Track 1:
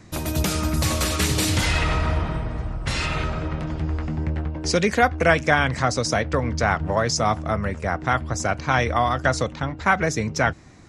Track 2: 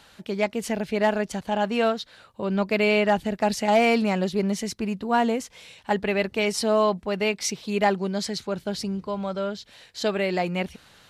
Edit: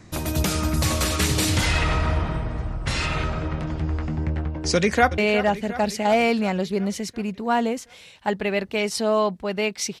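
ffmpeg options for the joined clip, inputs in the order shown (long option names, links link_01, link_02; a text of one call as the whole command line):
ffmpeg -i cue0.wav -i cue1.wav -filter_complex "[0:a]apad=whole_dur=10,atrim=end=10,atrim=end=5.182[link_01];[1:a]atrim=start=2.808:end=7.63[link_02];[link_01][link_02]acrossfade=duration=0.004:curve1=hsin:curve2=hsin,asplit=2[link_03][link_04];[link_04]afade=type=in:start_time=4.75:duration=0.01,afade=type=out:start_time=5.18:duration=0.01,aecho=0:1:360|720|1080|1440|1800|2160|2520|2880:0.237137|0.154139|0.100191|0.0651239|0.0423305|0.0275148|0.0178846|0.011625[link_05];[link_03][link_05]amix=inputs=2:normalize=0" out.wav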